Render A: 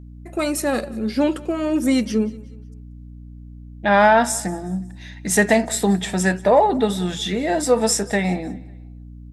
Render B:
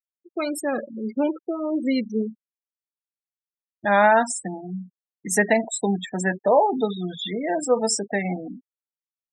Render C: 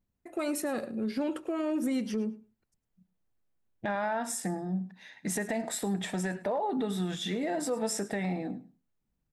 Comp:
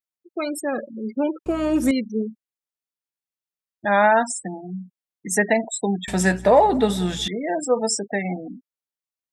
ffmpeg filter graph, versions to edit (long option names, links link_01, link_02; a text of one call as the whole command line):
ffmpeg -i take0.wav -i take1.wav -filter_complex "[0:a]asplit=2[link_01][link_02];[1:a]asplit=3[link_03][link_04][link_05];[link_03]atrim=end=1.462[link_06];[link_01]atrim=start=1.458:end=1.912[link_07];[link_04]atrim=start=1.908:end=6.082[link_08];[link_02]atrim=start=6.078:end=7.282[link_09];[link_05]atrim=start=7.278[link_10];[link_06][link_07]acrossfade=duration=0.004:curve1=hsin:curve2=hsin[link_11];[link_11][link_08]acrossfade=duration=0.004:curve1=hsin:curve2=hsin[link_12];[link_12][link_09]acrossfade=duration=0.004:curve1=hsin:curve2=hsin[link_13];[link_13][link_10]acrossfade=duration=0.004:curve1=hsin:curve2=hsin" out.wav